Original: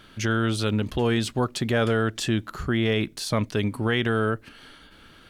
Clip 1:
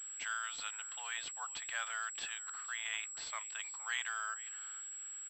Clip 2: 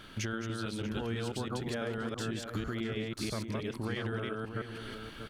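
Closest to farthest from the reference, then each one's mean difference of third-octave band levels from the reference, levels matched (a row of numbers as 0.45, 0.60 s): 2, 1; 9.0, 15.5 dB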